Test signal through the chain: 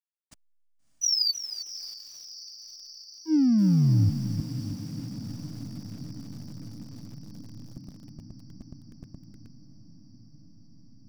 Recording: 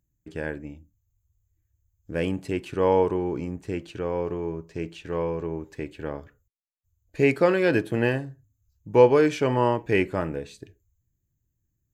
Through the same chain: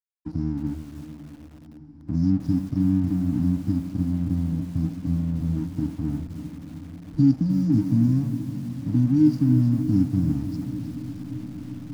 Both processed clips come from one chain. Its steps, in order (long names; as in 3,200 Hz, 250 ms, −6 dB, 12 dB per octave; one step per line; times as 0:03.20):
hearing-aid frequency compression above 2,100 Hz 1.5 to 1
brick-wall band-stop 320–4,500 Hz
high-shelf EQ 5,800 Hz −8 dB
in parallel at +1 dB: downward compressor 12 to 1, threshold −36 dBFS
on the sum: slack as between gear wheels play −43 dBFS
on a send: feedback delay with all-pass diffusion 644 ms, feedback 77%, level −14.5 dB
on the sum: feedback echo at a low word length 313 ms, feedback 35%, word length 8 bits, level −10.5 dB
level +6 dB